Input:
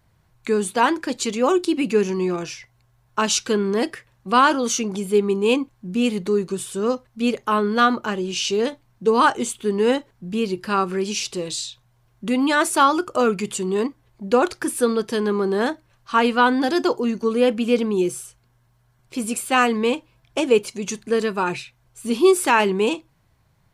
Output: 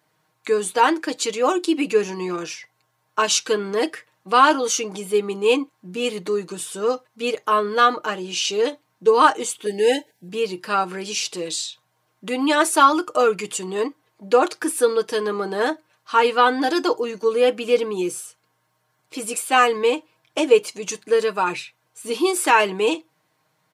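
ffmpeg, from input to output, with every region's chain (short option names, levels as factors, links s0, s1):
-filter_complex "[0:a]asettb=1/sr,asplit=3[s0][s1][s2];[s0]atrim=end=9.664[s3];[s1]atrim=start=9.66:end=10.29,asetpts=PTS-STARTPTS,afade=t=in:d=0.004:c=qsin,afade=t=out:st=0.626:d=0.004:c=qsin,asuperstop=centerf=1200:order=20:qfactor=1.9,aemphasis=mode=production:type=cd[s4];[s2]atrim=start=10.286[s5];[s3][s4]acrossfade=d=0.004:c1=hsin:c2=qsin[s6];[s6][s5]acrossfade=d=0.004:c1=qsin:c2=hsin,highpass=300,aecho=1:1:6.5:0.62"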